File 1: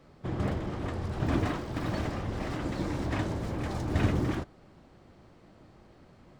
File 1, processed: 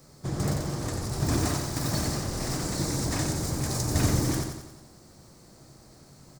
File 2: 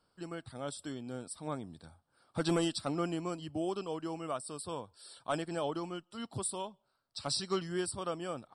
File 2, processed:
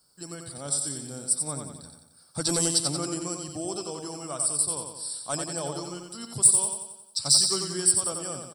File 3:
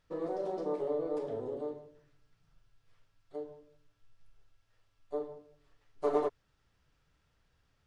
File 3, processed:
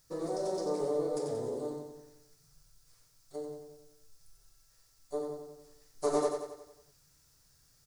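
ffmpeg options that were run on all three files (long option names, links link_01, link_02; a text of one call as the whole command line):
ffmpeg -i in.wav -filter_complex "[0:a]equalizer=frequency=140:width=5.7:gain=8.5,aexciter=amount=4.8:drive=9.1:freq=4500,asplit=2[link_01][link_02];[link_02]aecho=0:1:90|180|270|360|450|540|630:0.531|0.276|0.144|0.0746|0.0388|0.0202|0.0105[link_03];[link_01][link_03]amix=inputs=2:normalize=0" out.wav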